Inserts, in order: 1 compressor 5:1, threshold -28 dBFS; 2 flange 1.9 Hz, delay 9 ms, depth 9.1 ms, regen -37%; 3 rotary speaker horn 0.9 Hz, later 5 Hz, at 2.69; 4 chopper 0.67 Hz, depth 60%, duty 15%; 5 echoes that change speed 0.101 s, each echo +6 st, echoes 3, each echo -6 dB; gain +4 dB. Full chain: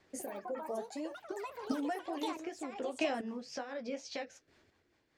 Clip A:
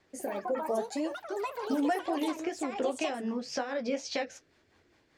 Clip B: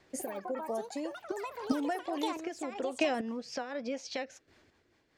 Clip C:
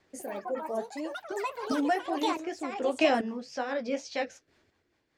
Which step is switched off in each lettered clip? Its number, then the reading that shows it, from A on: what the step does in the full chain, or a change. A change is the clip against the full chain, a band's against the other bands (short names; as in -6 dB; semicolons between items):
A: 4, momentary loudness spread change -2 LU; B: 2, loudness change +3.5 LU; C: 1, mean gain reduction 6.5 dB